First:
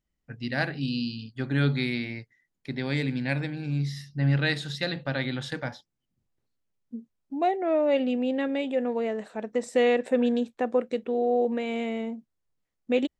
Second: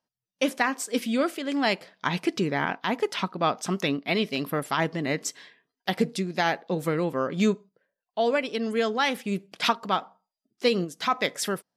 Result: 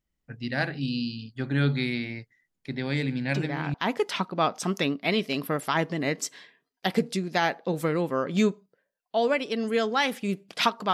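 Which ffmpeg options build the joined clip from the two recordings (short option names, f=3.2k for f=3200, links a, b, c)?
-filter_complex "[1:a]asplit=2[a][b];[0:a]apad=whole_dur=10.93,atrim=end=10.93,atrim=end=3.742[c];[b]atrim=start=2.768:end=9.96[d];[a]atrim=start=2.31:end=2.77,asetpts=PTS-STARTPTS,volume=-7dB,afade=t=in:d=0.004:c=hsin,afade=t=out:st=0.456:d=0.004:c=hsin,adelay=3280[e];[c][d]acrossfade=d=0.004:c1=hsin:c2=hsin[f];[f][e]amix=inputs=2:normalize=0"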